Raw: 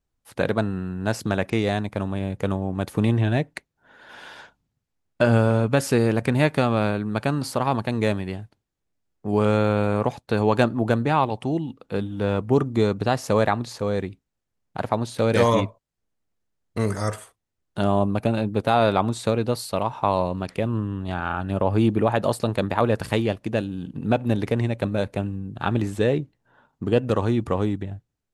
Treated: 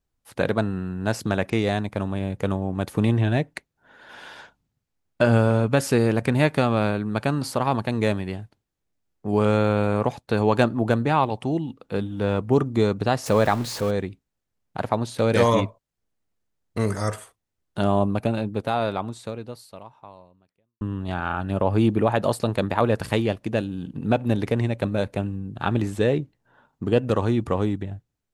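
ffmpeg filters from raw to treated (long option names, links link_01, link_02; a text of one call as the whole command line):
ffmpeg -i in.wav -filter_complex "[0:a]asettb=1/sr,asplit=3[link_01][link_02][link_03];[link_01]atrim=end=13.264[link_04];[link_02]atrim=start=13.26:end=13.91,asetpts=PTS-STARTPTS,afade=type=in:duration=0.004:curve=qsin,afade=type=out:start_time=0.646:duration=0.004:curve=qsin,aeval=exprs='val(0)+0.5*0.0282*sgn(val(0))':channel_layout=same[link_05];[link_03]atrim=start=13.906[link_06];[link_04][link_05]acrossfade=duration=0.004:curve1=hsin:curve2=qsin[link_07];[link_07][link_06]acrossfade=duration=0.004:curve1=qsin:curve2=hsin,asplit=2[link_08][link_09];[link_08]atrim=end=20.81,asetpts=PTS-STARTPTS,afade=type=out:start_time=18.07:duration=2.74:curve=qua[link_10];[link_09]atrim=start=20.81,asetpts=PTS-STARTPTS,afade=type=in:duration=0.004:curve=hsin[link_11];[link_10][link_11]concat=n=2:v=0:a=1" out.wav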